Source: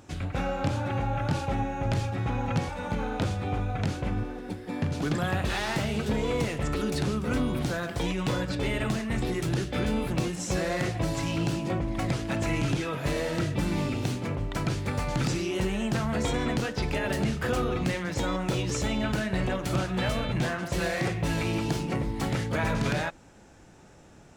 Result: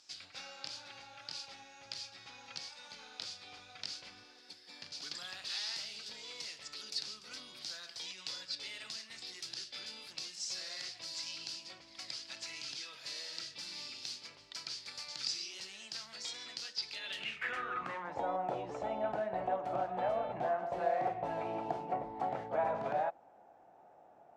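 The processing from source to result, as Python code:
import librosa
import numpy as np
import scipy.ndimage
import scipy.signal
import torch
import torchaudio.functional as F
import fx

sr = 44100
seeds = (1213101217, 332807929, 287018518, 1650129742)

y = fx.rider(x, sr, range_db=10, speed_s=2.0)
y = fx.filter_sweep_bandpass(y, sr, from_hz=4800.0, to_hz=730.0, start_s=16.87, end_s=18.22, q=5.1)
y = y * 10.0 ** (6.0 / 20.0)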